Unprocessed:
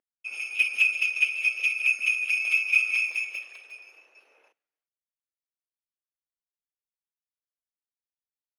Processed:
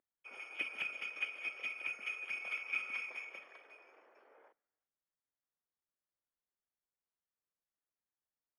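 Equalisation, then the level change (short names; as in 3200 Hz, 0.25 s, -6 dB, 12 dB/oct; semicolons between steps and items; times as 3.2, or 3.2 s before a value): polynomial smoothing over 41 samples; +1.5 dB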